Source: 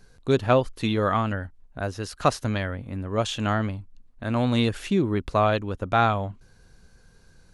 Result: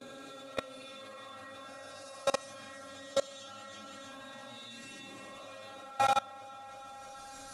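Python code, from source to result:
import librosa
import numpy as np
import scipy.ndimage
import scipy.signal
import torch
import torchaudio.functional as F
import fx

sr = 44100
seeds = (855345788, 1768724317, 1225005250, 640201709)

y = fx.spec_swells(x, sr, rise_s=1.29)
y = fx.recorder_agc(y, sr, target_db=-10.0, rise_db_per_s=14.0, max_gain_db=30)
y = np.clip(10.0 ** (15.5 / 20.0) * y, -1.0, 1.0) / 10.0 ** (15.5 / 20.0)
y = fx.comb_fb(y, sr, f0_hz=270.0, decay_s=0.17, harmonics='all', damping=0.0, mix_pct=100)
y = fx.quant_companded(y, sr, bits=6)
y = scipy.signal.sosfilt(scipy.signal.butter(2, 93.0, 'highpass', fs=sr, output='sos'), y)
y = fx.dynamic_eq(y, sr, hz=290.0, q=1.4, threshold_db=-47.0, ratio=4.0, max_db=-7)
y = scipy.signal.sosfilt(scipy.signal.butter(4, 10000.0, 'lowpass', fs=sr, output='sos'), y)
y = fx.high_shelf(y, sr, hz=4000.0, db=10.0)
y = fx.echo_alternate(y, sr, ms=163, hz=950.0, feedback_pct=79, wet_db=-5.5)
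y = fx.rev_freeverb(y, sr, rt60_s=0.56, hf_ratio=0.6, predelay_ms=60, drr_db=-6.0)
y = fx.level_steps(y, sr, step_db=23)
y = y * 10.0 ** (-2.0 / 20.0)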